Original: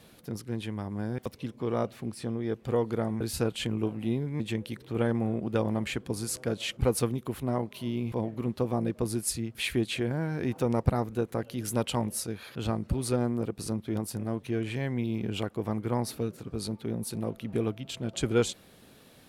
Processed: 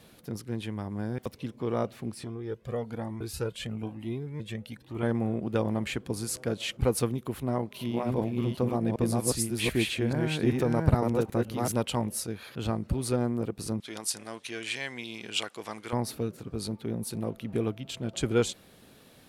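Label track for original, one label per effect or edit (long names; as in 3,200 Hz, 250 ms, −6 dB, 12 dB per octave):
2.240000	5.030000	flanger whose copies keep moving one way rising 1.1 Hz
7.400000	11.720000	delay that plays each chunk backwards 390 ms, level −1 dB
13.800000	15.930000	meter weighting curve ITU-R 468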